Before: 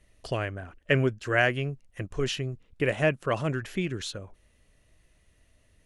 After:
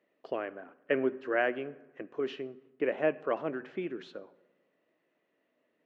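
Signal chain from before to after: HPF 270 Hz 24 dB/oct; tape spacing loss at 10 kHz 44 dB; on a send: reverb RT60 1.1 s, pre-delay 3 ms, DRR 15 dB

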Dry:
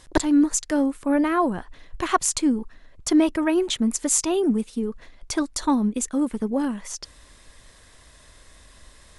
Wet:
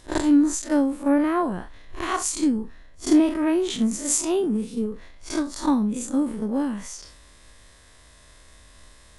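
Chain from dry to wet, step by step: time blur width 93 ms; transient shaper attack +7 dB, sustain +3 dB

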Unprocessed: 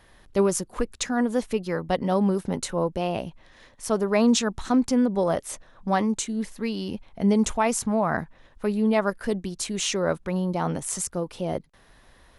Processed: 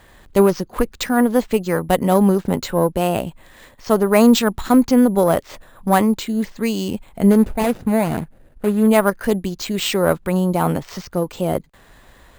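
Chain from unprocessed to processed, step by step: 7.31–8.88 median filter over 41 samples; careless resampling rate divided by 4×, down filtered, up hold; added harmonics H 4 -25 dB, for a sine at -8.5 dBFS; gain +7.5 dB

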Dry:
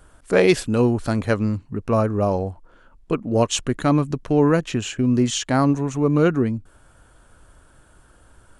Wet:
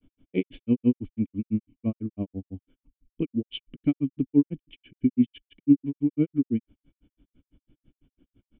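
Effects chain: vocal tract filter i; grains 0.1 s, grains 6/s, pitch spread up and down by 0 st; gain +6 dB

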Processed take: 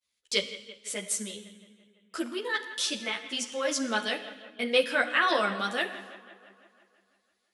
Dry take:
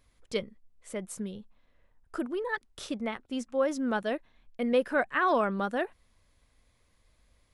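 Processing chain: weighting filter D; expander -54 dBFS; tone controls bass -5 dB, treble +9 dB; analogue delay 0.167 s, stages 4096, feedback 63%, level -16 dB; Schroeder reverb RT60 0.97 s, combs from 26 ms, DRR 11 dB; ensemble effect; gain +2 dB

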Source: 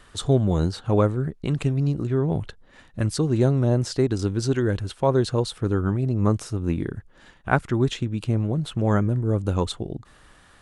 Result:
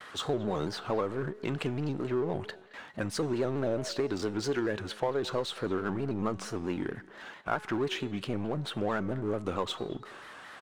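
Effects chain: gate with hold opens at -44 dBFS; weighting filter A; power-law curve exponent 0.7; high shelf 4000 Hz -11.5 dB; resonator 200 Hz, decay 0.84 s, harmonics all, mix 50%; compressor, threshold -26 dBFS, peak gain reduction 7.5 dB; speakerphone echo 0.22 s, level -19 dB; shaped vibrato square 4.5 Hz, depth 100 cents

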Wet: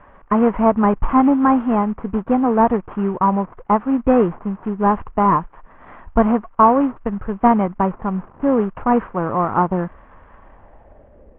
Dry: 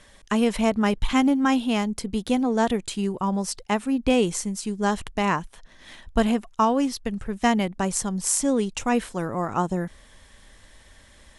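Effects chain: CVSD 16 kbps; low-pass sweep 1100 Hz -> 480 Hz, 10.36–11.34; gain +5.5 dB

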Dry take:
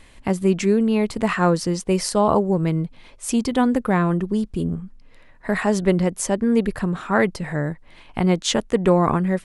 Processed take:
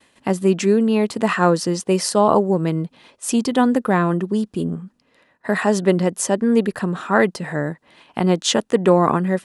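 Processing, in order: expander -42 dBFS; HPF 180 Hz 12 dB/oct; notch 2200 Hz, Q 10; gain +3 dB

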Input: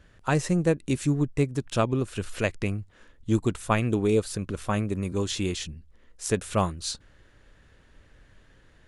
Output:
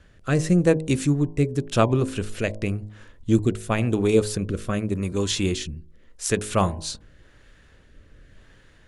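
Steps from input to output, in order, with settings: rotary speaker horn 0.9 Hz; de-hum 52.66 Hz, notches 20; gain +6 dB

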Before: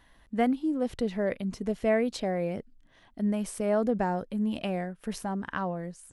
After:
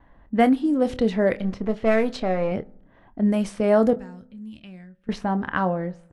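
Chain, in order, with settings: 1.36–2.52 half-wave gain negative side -7 dB; low-pass opened by the level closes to 1100 Hz, open at -23 dBFS; gate with hold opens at -57 dBFS; 3.93–5.09 passive tone stack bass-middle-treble 6-0-2; doubler 27 ms -12 dB; reverb RT60 0.75 s, pre-delay 3 ms, DRR 18.5 dB; gain +8 dB

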